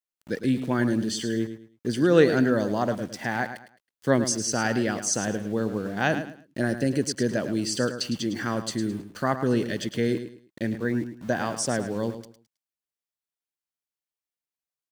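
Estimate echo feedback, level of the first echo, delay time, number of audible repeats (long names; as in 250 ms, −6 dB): 27%, −10.5 dB, 107 ms, 3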